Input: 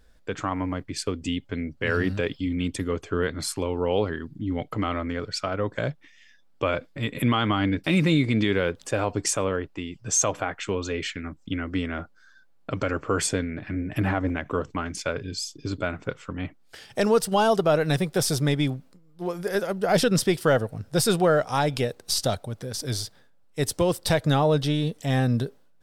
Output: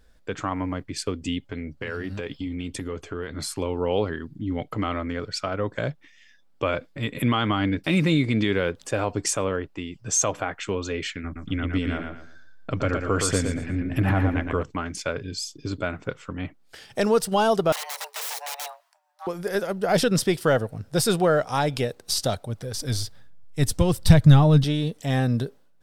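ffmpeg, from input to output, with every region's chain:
-filter_complex "[0:a]asettb=1/sr,asplit=3[s0][s1][s2];[s0]atrim=end=1.514[s3];[s1]atrim=start=1.51:end=3.54,asetpts=PTS-STARTPTS,afade=t=in:d=0.004:c=qsin,afade=t=out:st=2.026:d=0.004:c=qsin,acompressor=threshold=0.0447:ratio=6:attack=3.2:release=140:knee=1:detection=peak,asplit=2[s4][s5];[s5]adelay=14,volume=0.224[s6];[s4][s6]amix=inputs=2:normalize=0,atrim=end_sample=89523[s7];[s2]atrim=start=3.536[s8];[s3][s7]acrossfade=d=0.004:c1=hsin:c2=qsin[s9];[s9][s8]acrossfade=d=0.004:c1=qsin:c2=hsin,asettb=1/sr,asplit=3[s10][s11][s12];[s10]atrim=end=11.244[s13];[s11]atrim=start=11.24:end=14.63,asetpts=PTS-STARTPTS,afade=t=in:d=0.004:c=qsin,afade=t=out:st=3.386:d=0.004:c=qsin,lowshelf=f=83:g=9,aecho=1:1:116|232|348|464:0.562|0.163|0.0473|0.0137,atrim=end_sample=149499[s14];[s12]atrim=start=14.626[s15];[s13][s14]acrossfade=d=0.004:c1=hsin:c2=qsin[s16];[s16][s15]acrossfade=d=0.004:c1=qsin:c2=hsin,asettb=1/sr,asplit=3[s17][s18][s19];[s17]atrim=end=17.724[s20];[s18]atrim=start=17.72:end=19.27,asetpts=PTS-STARTPTS,afade=t=in:d=0.004:c=qsin,afade=t=out:st=1.546:d=0.004:c=qsin,highpass=500,aeval=exprs='(mod(21.1*val(0)+1,2)-1)/21.1':c=same,afreqshift=430[s21];[s19]atrim=start=19.266[s22];[s20][s21]acrossfade=d=0.004:c1=hsin:c2=qsin[s23];[s23][s22]acrossfade=d=0.004:c1=qsin:c2=hsin,asettb=1/sr,asplit=3[s24][s25][s26];[s24]atrim=end=22.494[s27];[s25]atrim=start=22.49:end=24.64,asetpts=PTS-STARTPTS,afade=t=in:d=0.004:c=qsin,afade=t=out:st=2.146:d=0.004:c=qsin,asubboost=boost=11.5:cutoff=170,aphaser=in_gain=1:out_gain=1:delay=4.4:decay=0.3:speed=1.2:type=triangular[s28];[s26]atrim=start=24.636[s29];[s27][s28]acrossfade=d=0.004:c1=hsin:c2=qsin[s30];[s30][s29]acrossfade=d=0.004:c1=qsin:c2=hsin"

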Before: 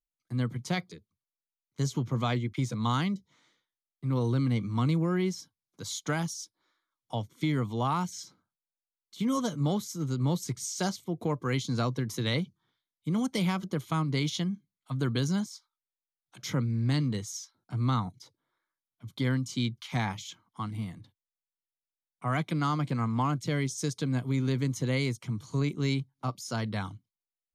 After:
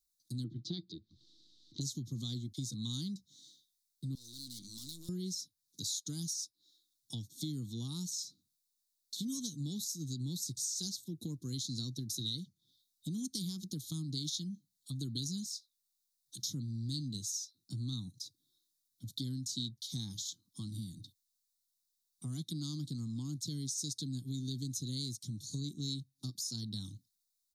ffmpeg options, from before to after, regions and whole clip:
-filter_complex "[0:a]asettb=1/sr,asplit=3[s0][s1][s2];[s0]atrim=end=0.444[s3];[s1]atrim=start=0.44:end=1.81,asetpts=PTS-STARTPTS,afade=t=in:d=0.004:c=qsin,afade=t=out:st=1.366:d=0.004:c=qsin,lowpass=f=3900:w=0.5412,lowpass=f=3900:w=1.3066,equalizer=f=330:t=o:w=0.25:g=13.5,acompressor=mode=upward:threshold=0.00708:ratio=2.5:attack=3.2:release=140:knee=2.83:detection=peak[s4];[s2]atrim=start=1.806[s5];[s3][s4]acrossfade=d=0.004:c1=hsin:c2=qsin[s6];[s6][s5]acrossfade=d=0.004:c1=qsin:c2=hsin,asettb=1/sr,asplit=3[s7][s8][s9];[s7]atrim=end=4.154[s10];[s8]atrim=start=4.15:end=5.09,asetpts=PTS-STARTPTS,afade=t=in:d=0.004:c=qsin,afade=t=out:st=0.936:d=0.004:c=qsin,highpass=f=1300:p=1,highshelf=f=2600:g=6.5,aeval=exprs='(tanh(282*val(0)+0.55)-tanh(0.55))/282':c=same[s11];[s9]atrim=start=5.086[s12];[s10][s11]acrossfade=d=0.004:c1=hsin:c2=qsin[s13];[s13][s12]acrossfade=d=0.004:c1=qsin:c2=hsin,firequalizer=gain_entry='entry(300,0);entry(560,-26);entry(2500,-27);entry(3700,12)':delay=0.05:min_phase=1,acompressor=threshold=0.00562:ratio=2.5,volume=1.26"

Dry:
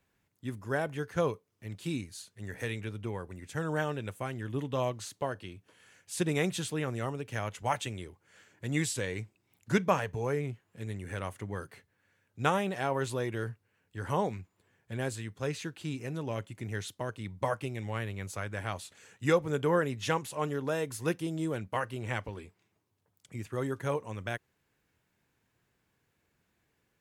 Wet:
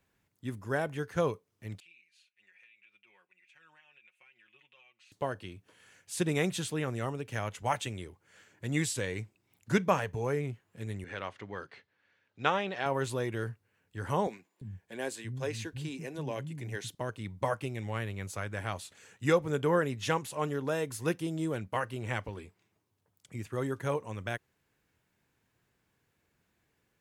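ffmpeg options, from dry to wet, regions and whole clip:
-filter_complex "[0:a]asettb=1/sr,asplit=3[s0][s1][s2];[s0]atrim=end=1.804[s3];[s1]atrim=start=1.8:end=5.12,asetpts=PTS-STARTPTS,afade=t=in:d=0.004:c=qsin,afade=t=out:st=3.316:d=0.004:c=qsin,bandpass=f=2500:t=q:w=7.8,acompressor=threshold=0.00112:ratio=5:attack=3.2:release=140:knee=1:detection=peak,aecho=1:1:5.5:0.75,atrim=end_sample=146412[s4];[s2]atrim=start=5.116[s5];[s3][s4]acrossfade=d=0.004:c1=hsin:c2=qsin[s6];[s6][s5]acrossfade=d=0.004:c1=qsin:c2=hsin,asettb=1/sr,asplit=3[s7][s8][s9];[s7]atrim=end=11.044[s10];[s8]atrim=start=11.04:end=12.86,asetpts=PTS-STARTPTS,afade=t=in:d=0.004:c=qsin,afade=t=out:st=1.816:d=0.004:c=qsin,lowpass=f=4300:w=0.5412,lowpass=f=4300:w=1.3066,aemphasis=mode=production:type=bsi[s11];[s9]atrim=start=12.856[s12];[s10][s11]acrossfade=d=0.004:c1=hsin:c2=qsin[s13];[s13][s12]acrossfade=d=0.004:c1=qsin:c2=hsin,asettb=1/sr,asplit=3[s14][s15][s16];[s14]atrim=end=14.274[s17];[s15]atrim=start=14.27:end=16.95,asetpts=PTS-STARTPTS,afade=t=in:d=0.004:c=qsin,afade=t=out:st=2.676:d=0.004:c=qsin,bandreject=f=1300:w=6.3,acrossover=split=220[s18][s19];[s18]adelay=340[s20];[s20][s19]amix=inputs=2:normalize=0,atrim=end_sample=118188[s21];[s16]atrim=start=16.946[s22];[s17][s21]acrossfade=d=0.004:c1=hsin:c2=qsin[s23];[s23][s22]acrossfade=d=0.004:c1=qsin:c2=hsin"

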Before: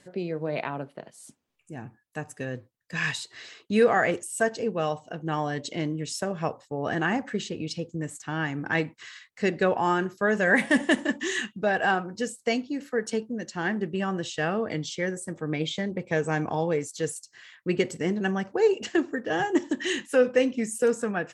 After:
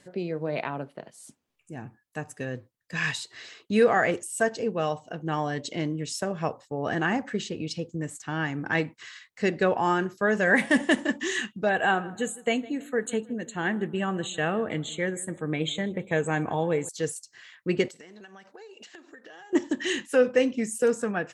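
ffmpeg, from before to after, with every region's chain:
-filter_complex "[0:a]asettb=1/sr,asplit=3[s0][s1][s2];[s0]atrim=end=11.694[s3];[s1]atrim=start=11.69:end=16.89,asetpts=PTS-STARTPTS,afade=t=in:d=0.004:c=qsin,afade=t=out:st=5.196:d=0.004:c=qsin,asuperstop=centerf=5200:order=12:qfactor=2.3,highshelf=f=5100:g=5,asplit=2[s4][s5];[s5]adelay=157,lowpass=f=2100:p=1,volume=0.112,asplit=2[s6][s7];[s7]adelay=157,lowpass=f=2100:p=1,volume=0.4,asplit=2[s8][s9];[s9]adelay=157,lowpass=f=2100:p=1,volume=0.4[s10];[s4][s6][s8][s10]amix=inputs=4:normalize=0,atrim=end_sample=229320[s11];[s2]atrim=start=16.886[s12];[s3][s11]acrossfade=d=0.004:c1=hsin:c2=qsin[s13];[s13][s12]acrossfade=d=0.004:c1=qsin:c2=hsin,asettb=1/sr,asplit=3[s14][s15][s16];[s14]atrim=end=17.884[s17];[s15]atrim=start=17.88:end=19.53,asetpts=PTS-STARTPTS,afade=t=in:d=0.004:c=qsin,afade=t=out:st=1.646:d=0.004:c=qsin,highpass=f=1000:p=1,equalizer=f=3900:w=5.8:g=6.5,acompressor=threshold=0.00708:ratio=20:attack=3.2:release=140:knee=1:detection=peak[s18];[s16]atrim=start=19.526[s19];[s17][s18]acrossfade=d=0.004:c1=hsin:c2=qsin[s20];[s20][s19]acrossfade=d=0.004:c1=qsin:c2=hsin"

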